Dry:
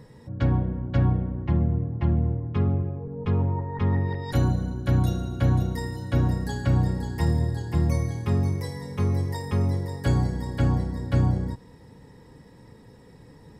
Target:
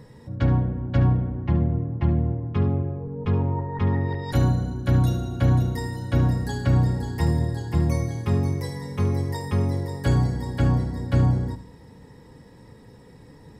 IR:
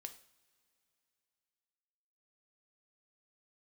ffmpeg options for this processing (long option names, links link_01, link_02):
-filter_complex "[0:a]asplit=2[link_01][link_02];[1:a]atrim=start_sample=2205,adelay=72[link_03];[link_02][link_03]afir=irnorm=-1:irlink=0,volume=-7dB[link_04];[link_01][link_04]amix=inputs=2:normalize=0,volume=1.5dB"